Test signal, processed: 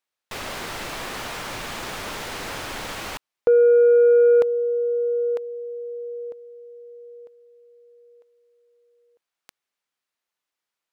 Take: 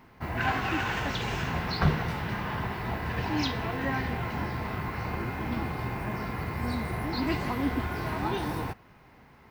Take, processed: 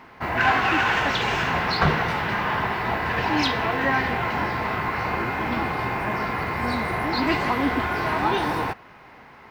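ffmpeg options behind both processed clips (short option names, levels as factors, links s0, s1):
-filter_complex "[0:a]asplit=2[s0][s1];[s1]highpass=f=720:p=1,volume=4.47,asoftclip=type=tanh:threshold=0.266[s2];[s0][s2]amix=inputs=2:normalize=0,lowpass=f=2800:p=1,volume=0.501,volume=1.68"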